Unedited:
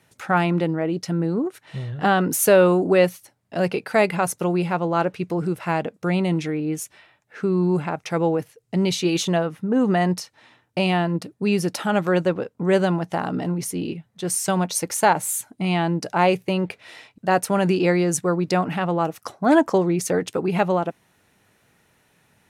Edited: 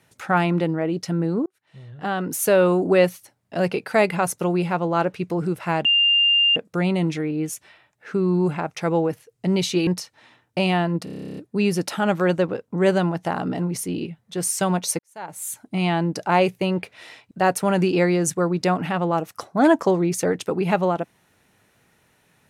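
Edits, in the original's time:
1.46–2.91 s: fade in
5.85 s: add tone 2.8 kHz -14 dBFS 0.71 s
9.16–10.07 s: delete
11.24 s: stutter 0.03 s, 12 plays
14.86–15.50 s: fade in quadratic

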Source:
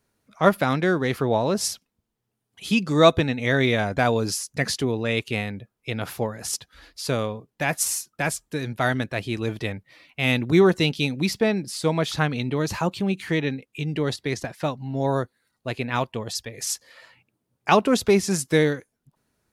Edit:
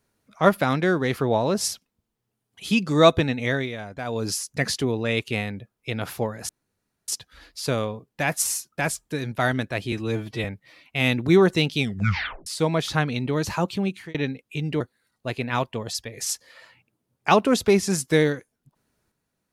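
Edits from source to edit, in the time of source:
3.42–4.32 s: dip -11.5 dB, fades 0.27 s
6.49 s: insert room tone 0.59 s
9.33–9.68 s: stretch 1.5×
11.02 s: tape stop 0.68 s
12.95–13.38 s: fade out equal-power
14.04–15.21 s: delete

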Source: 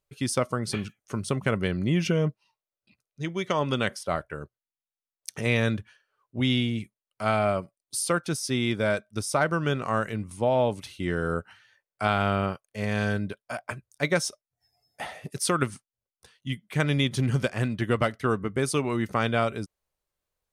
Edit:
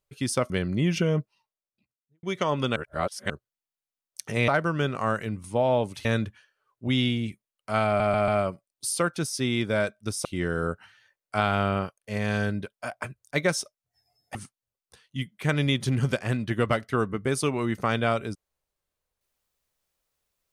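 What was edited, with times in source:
0.50–1.59 s: delete
2.29–3.32 s: studio fade out
3.85–4.39 s: reverse
7.38 s: stutter 0.14 s, 4 plays
9.35–10.92 s: move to 5.57 s
15.02–15.66 s: delete

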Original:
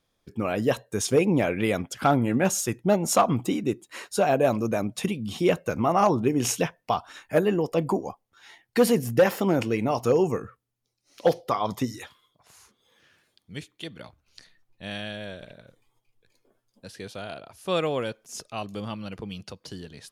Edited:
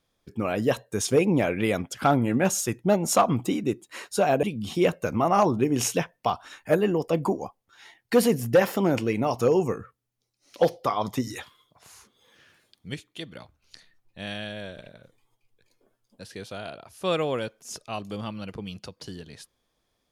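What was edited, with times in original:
4.43–5.07 s: delete
11.91–13.58 s: gain +3.5 dB

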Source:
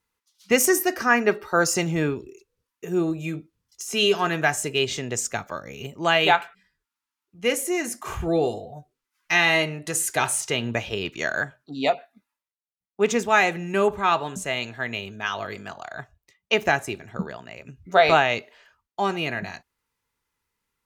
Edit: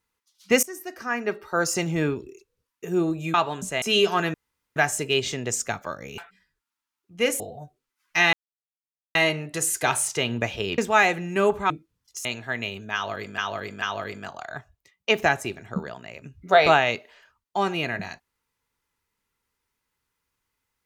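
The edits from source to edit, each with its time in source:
0.63–2.13 s: fade in, from -23 dB
3.34–3.89 s: swap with 14.08–14.56 s
4.41 s: insert room tone 0.42 s
5.83–6.42 s: delete
7.64–8.55 s: delete
9.48 s: insert silence 0.82 s
11.11–13.16 s: delete
15.25–15.69 s: loop, 3 plays

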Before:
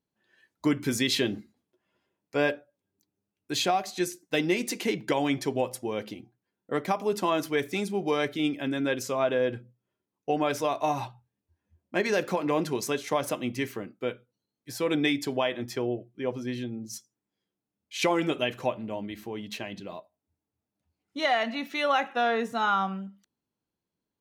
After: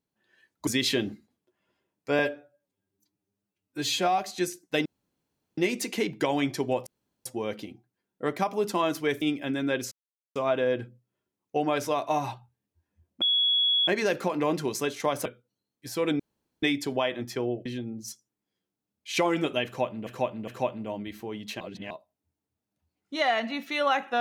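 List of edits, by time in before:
0.67–0.93 s: delete
2.45–3.78 s: stretch 1.5×
4.45 s: insert room tone 0.72 s
5.74 s: insert room tone 0.39 s
7.70–8.39 s: delete
9.09 s: insert silence 0.44 s
11.95 s: add tone 3.36 kHz -20.5 dBFS 0.66 s
13.33–14.09 s: delete
15.03 s: insert room tone 0.43 s
16.06–16.51 s: delete
18.51–18.92 s: loop, 3 plays
19.64–19.94 s: reverse

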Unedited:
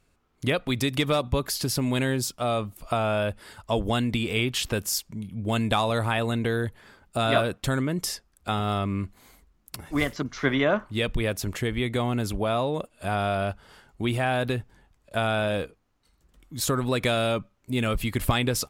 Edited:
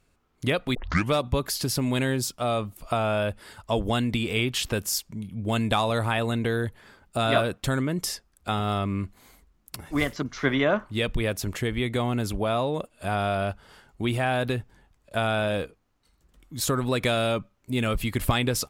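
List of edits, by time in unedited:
0.75 s: tape start 0.37 s

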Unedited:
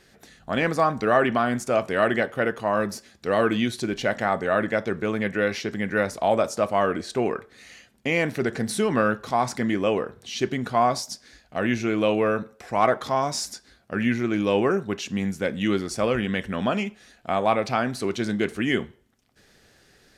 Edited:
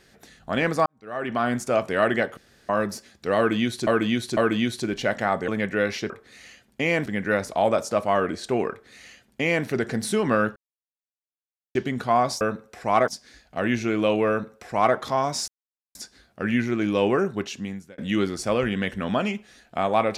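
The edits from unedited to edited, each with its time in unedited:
0.86–1.46 s: fade in quadratic
2.37–2.69 s: room tone
3.37–3.87 s: loop, 3 plays
4.48–5.10 s: delete
7.36–8.32 s: copy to 5.72 s
9.22–10.41 s: mute
12.28–12.95 s: copy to 11.07 s
13.47 s: insert silence 0.47 s
14.91–15.50 s: fade out

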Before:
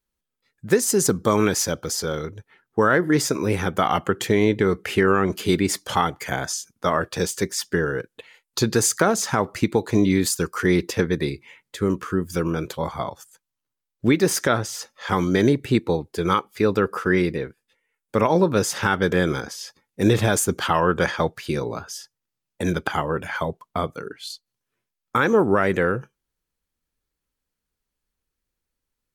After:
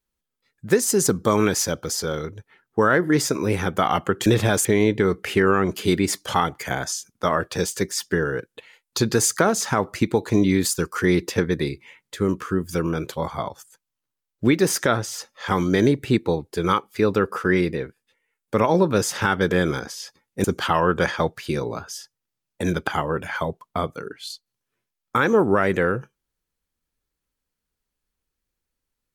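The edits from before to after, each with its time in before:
20.05–20.44 s: move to 4.26 s

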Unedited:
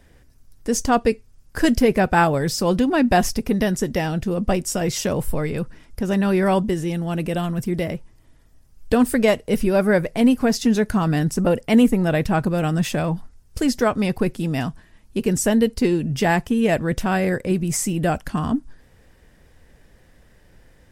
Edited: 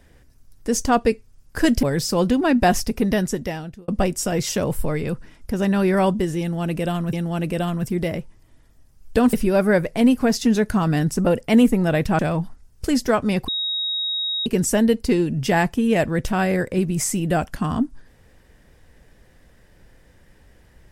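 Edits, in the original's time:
1.83–2.32 s: delete
3.69–4.37 s: fade out
6.89–7.62 s: loop, 2 plays
9.09–9.53 s: delete
12.39–12.92 s: delete
14.21–15.19 s: bleep 3.78 kHz -21.5 dBFS

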